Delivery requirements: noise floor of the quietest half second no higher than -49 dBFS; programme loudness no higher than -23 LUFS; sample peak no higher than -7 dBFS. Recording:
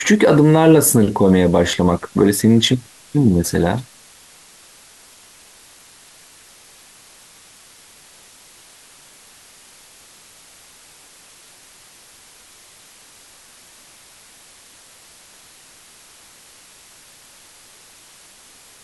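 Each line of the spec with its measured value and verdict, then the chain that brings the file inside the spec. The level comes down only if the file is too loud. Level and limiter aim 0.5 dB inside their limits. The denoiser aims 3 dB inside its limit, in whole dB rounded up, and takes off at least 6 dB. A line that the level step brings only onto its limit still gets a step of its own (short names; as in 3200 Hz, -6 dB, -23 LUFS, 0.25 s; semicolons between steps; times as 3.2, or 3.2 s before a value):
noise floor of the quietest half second -47 dBFS: fail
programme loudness -14.5 LUFS: fail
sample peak -2.5 dBFS: fail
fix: gain -9 dB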